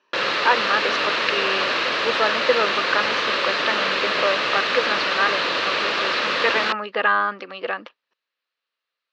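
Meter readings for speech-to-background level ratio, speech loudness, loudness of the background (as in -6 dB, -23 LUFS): -3.5 dB, -24.5 LUFS, -21.0 LUFS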